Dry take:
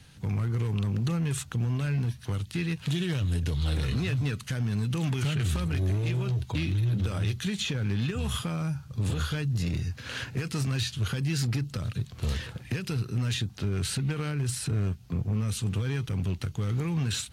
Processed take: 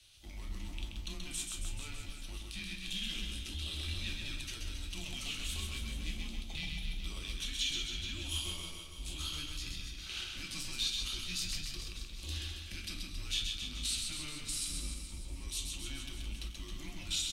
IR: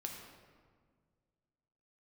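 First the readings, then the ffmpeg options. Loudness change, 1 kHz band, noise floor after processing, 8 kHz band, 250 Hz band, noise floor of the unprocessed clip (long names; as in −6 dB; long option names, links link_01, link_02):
−9.0 dB, −13.0 dB, −47 dBFS, −1.0 dB, −18.0 dB, −47 dBFS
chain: -filter_complex "[0:a]afreqshift=-150,highshelf=frequency=2200:width_type=q:width=1.5:gain=11,aecho=1:1:130|273|430.3|603.3|793.7:0.631|0.398|0.251|0.158|0.1[link_01];[1:a]atrim=start_sample=2205,atrim=end_sample=3969,asetrate=66150,aresample=44100[link_02];[link_01][link_02]afir=irnorm=-1:irlink=0,volume=-8dB"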